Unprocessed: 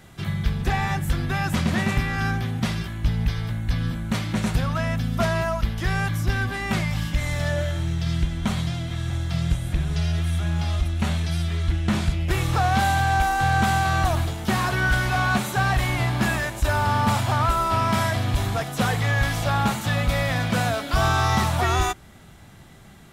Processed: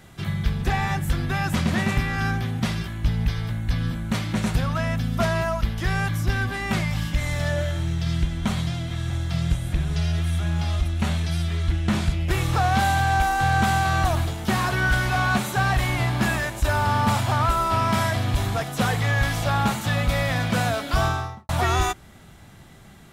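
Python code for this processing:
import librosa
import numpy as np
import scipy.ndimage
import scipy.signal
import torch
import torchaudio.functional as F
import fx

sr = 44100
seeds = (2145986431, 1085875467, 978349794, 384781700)

y = fx.studio_fade_out(x, sr, start_s=20.92, length_s=0.57)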